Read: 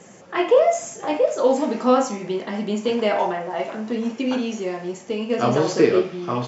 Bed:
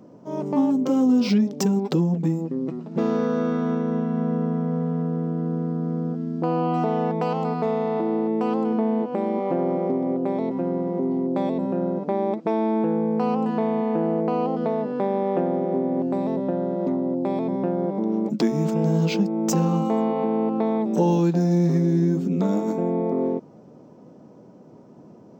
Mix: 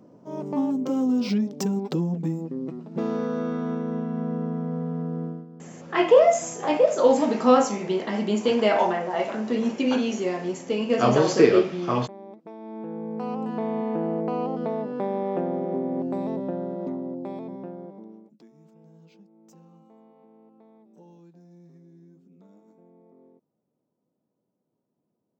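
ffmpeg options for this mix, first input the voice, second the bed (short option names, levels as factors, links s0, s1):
-filter_complex "[0:a]adelay=5600,volume=1[s0];[1:a]volume=3.35,afade=t=out:st=5.24:d=0.22:silence=0.188365,afade=t=in:st=12.59:d=1.2:silence=0.177828,afade=t=out:st=16.3:d=2.01:silence=0.0398107[s1];[s0][s1]amix=inputs=2:normalize=0"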